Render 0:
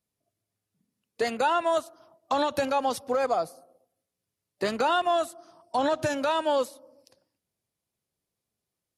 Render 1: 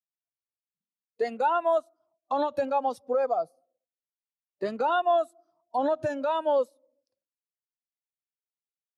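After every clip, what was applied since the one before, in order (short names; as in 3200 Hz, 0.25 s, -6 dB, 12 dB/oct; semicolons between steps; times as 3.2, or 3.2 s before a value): spectral expander 1.5:1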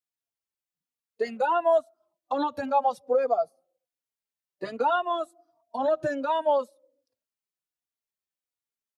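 endless flanger 3.6 ms -1.3 Hz; gain +4 dB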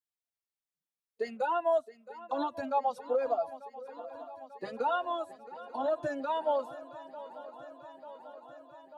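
swung echo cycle 0.892 s, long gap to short 3:1, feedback 70%, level -17 dB; gain -6 dB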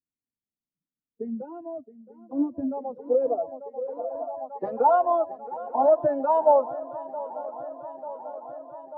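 low-pass sweep 250 Hz -> 790 Hz, 2.18–4.63; gain +6 dB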